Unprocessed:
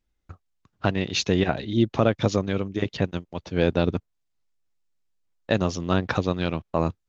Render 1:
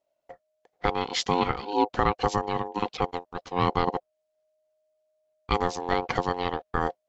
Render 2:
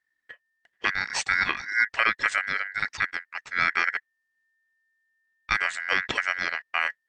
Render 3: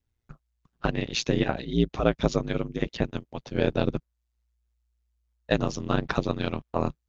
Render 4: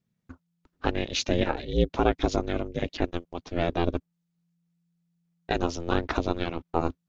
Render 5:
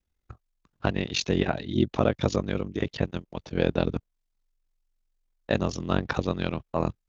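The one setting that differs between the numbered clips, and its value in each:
ring modulator, frequency: 620 Hz, 1.8 kHz, 59 Hz, 170 Hz, 22 Hz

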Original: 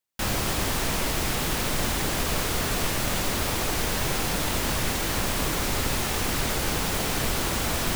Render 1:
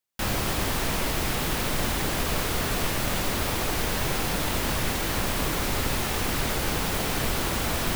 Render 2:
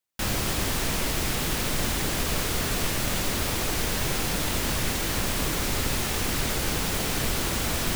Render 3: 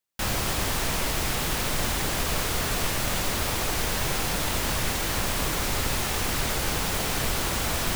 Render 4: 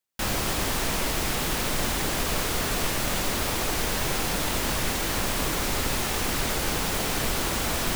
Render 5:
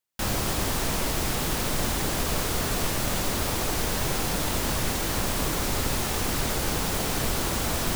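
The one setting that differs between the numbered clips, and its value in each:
dynamic bell, frequency: 7.1 kHz, 870 Hz, 270 Hz, 100 Hz, 2.3 kHz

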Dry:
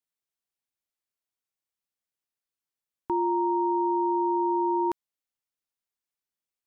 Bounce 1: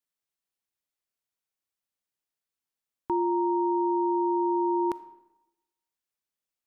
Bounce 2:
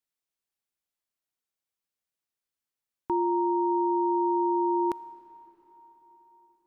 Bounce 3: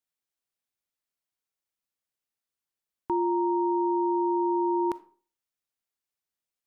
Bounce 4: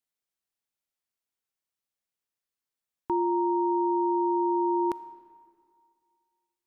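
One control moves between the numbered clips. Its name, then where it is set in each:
algorithmic reverb, RT60: 0.96 s, 4.7 s, 0.42 s, 2.1 s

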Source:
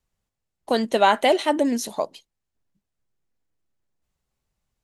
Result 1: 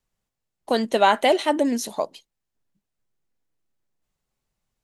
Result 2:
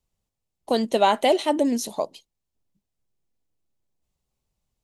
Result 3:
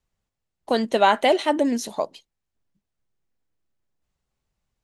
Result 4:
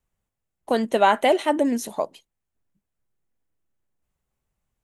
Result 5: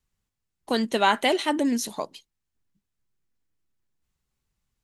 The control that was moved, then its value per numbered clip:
peaking EQ, frequency: 66 Hz, 1.6 kHz, 15 kHz, 4.6 kHz, 620 Hz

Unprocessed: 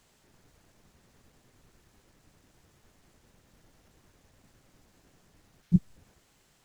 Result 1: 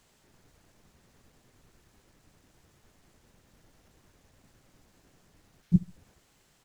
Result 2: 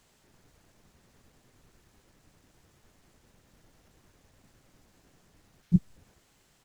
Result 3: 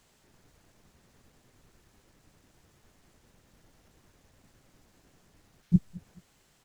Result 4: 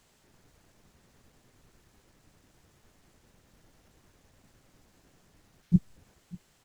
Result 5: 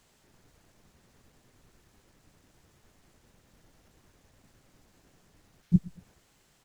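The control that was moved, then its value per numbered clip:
feedback delay, time: 70 ms, 1071 ms, 214 ms, 590 ms, 118 ms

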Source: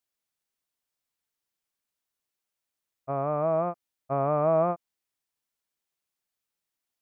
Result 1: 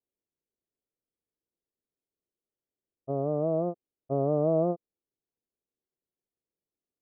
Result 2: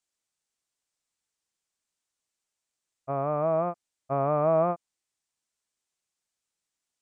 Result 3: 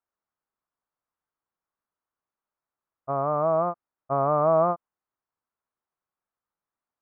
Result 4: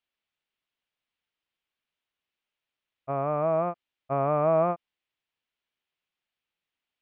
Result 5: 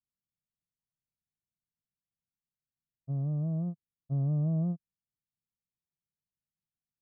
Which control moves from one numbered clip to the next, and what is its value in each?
resonant low-pass, frequency: 420 Hz, 7.9 kHz, 1.2 kHz, 3 kHz, 160 Hz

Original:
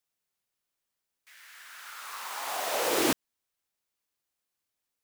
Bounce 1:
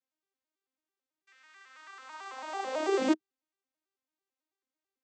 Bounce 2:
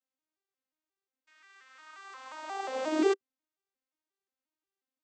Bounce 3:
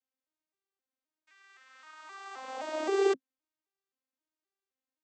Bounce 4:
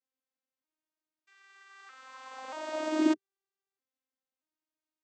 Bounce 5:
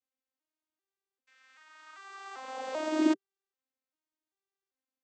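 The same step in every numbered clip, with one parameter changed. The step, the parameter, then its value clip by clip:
vocoder on a broken chord, a note every: 110 ms, 178 ms, 261 ms, 630 ms, 392 ms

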